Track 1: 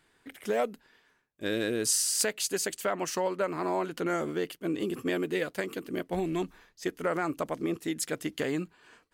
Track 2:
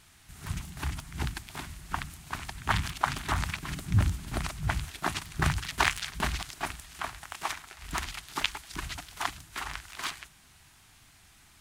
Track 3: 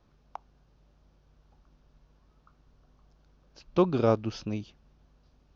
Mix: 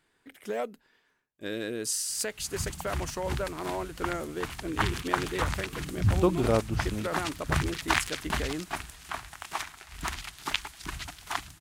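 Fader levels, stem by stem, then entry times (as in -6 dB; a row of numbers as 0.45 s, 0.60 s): -4.0 dB, -0.5 dB, -1.5 dB; 0.00 s, 2.10 s, 2.45 s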